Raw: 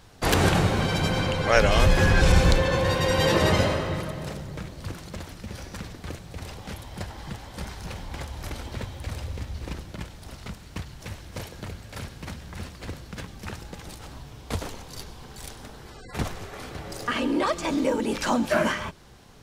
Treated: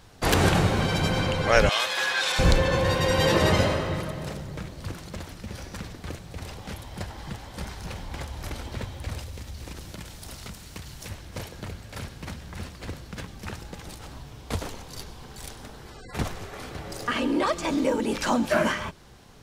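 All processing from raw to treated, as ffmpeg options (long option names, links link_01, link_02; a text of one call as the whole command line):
ffmpeg -i in.wav -filter_complex "[0:a]asettb=1/sr,asplit=3[link_01][link_02][link_03];[link_01]atrim=end=1.694[link_04];[link_02]atrim=start=1.69:end=2.39,asetpts=PTS-STARTPTS,afade=type=in:duration=0.004:curve=qsin,afade=type=out:start_time=0.696:duration=0.004:curve=qsin,highpass=950,equalizer=frequency=3700:width_type=o:width=0.33:gain=8[link_05];[link_03]atrim=start=2.386[link_06];[link_04][link_05]acrossfade=duration=0.004:curve1=hsin:curve2=qsin[link_07];[link_07][link_06]acrossfade=duration=0.004:curve1=qsin:curve2=hsin,asettb=1/sr,asplit=3[link_08][link_09][link_10];[link_08]atrim=end=9.194[link_11];[link_09]atrim=start=9.19:end=11.1,asetpts=PTS-STARTPTS,afade=type=in:duration=0.004:curve=qsin,afade=type=out:start_time=1.906:duration=0.004:curve=qsin,highshelf=frequency=4200:gain=10,acompressor=threshold=-34dB:ratio=5:attack=3.2:release=140:knee=1:detection=peak[link_12];[link_10]atrim=start=11.096[link_13];[link_11][link_12]acrossfade=duration=0.004:curve1=hsin:curve2=qsin[link_14];[link_14][link_13]acrossfade=duration=0.004:curve1=qsin:curve2=hsin" out.wav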